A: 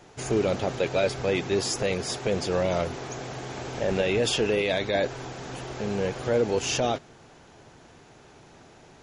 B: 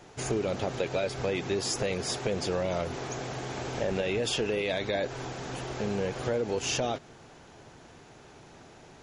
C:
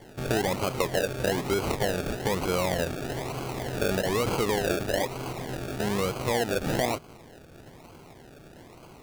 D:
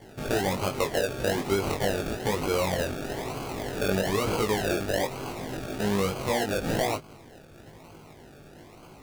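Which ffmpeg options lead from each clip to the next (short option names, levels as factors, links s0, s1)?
-af "acompressor=threshold=0.0501:ratio=5"
-af "acrusher=samples=34:mix=1:aa=0.000001:lfo=1:lforange=20.4:lforate=1.1,volume=1.41"
-af "flanger=delay=18.5:depth=2.4:speed=0.89,volume=1.41"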